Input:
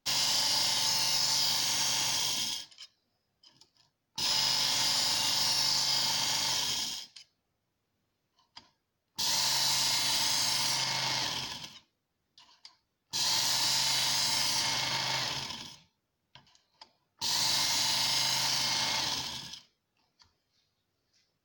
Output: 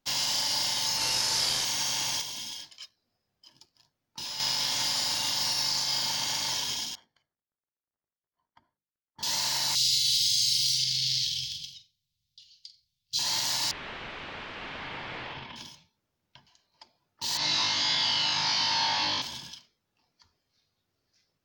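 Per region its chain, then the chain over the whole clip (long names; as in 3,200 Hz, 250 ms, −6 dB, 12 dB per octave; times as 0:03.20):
0:00.97–0:01.65: variable-slope delta modulation 64 kbit/s + double-tracking delay 37 ms −3 dB
0:02.21–0:04.40: downward compressor 3 to 1, threshold −40 dBFS + leveller curve on the samples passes 1
0:06.95–0:09.23: mu-law and A-law mismatch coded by A + Savitzky-Golay smoothing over 41 samples + mains-hum notches 50/100/150/200/250/300/350/400/450/500 Hz
0:09.75–0:13.19: Chebyshev band-stop filter 140–3,800 Hz, order 3 + parametric band 2,100 Hz +11.5 dB 2.2 octaves + flutter between parallel walls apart 7.8 metres, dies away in 0.26 s
0:13.71–0:15.56: wrap-around overflow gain 27.5 dB + low-pass filter 3,000 Hz 24 dB per octave
0:17.37–0:19.22: low-pass filter 4,900 Hz 24 dB per octave + flutter between parallel walls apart 3.4 metres, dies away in 0.69 s
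whole clip: no processing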